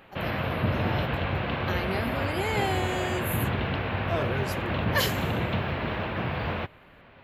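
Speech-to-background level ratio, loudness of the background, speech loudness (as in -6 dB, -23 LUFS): -4.0 dB, -29.0 LUFS, -33.0 LUFS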